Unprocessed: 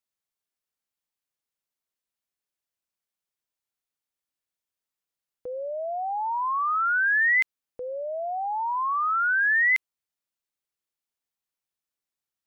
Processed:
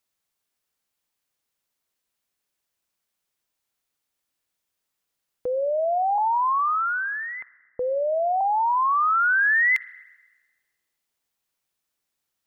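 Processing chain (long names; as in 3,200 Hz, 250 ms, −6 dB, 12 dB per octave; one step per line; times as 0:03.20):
downward compressor 3 to 1, threshold −29 dBFS, peak gain reduction 7.5 dB
0:06.18–0:08.41: low-pass filter 1,300 Hz 24 dB per octave
spring reverb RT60 1.3 s, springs 45/58 ms, chirp 20 ms, DRR 19.5 dB
level +8.5 dB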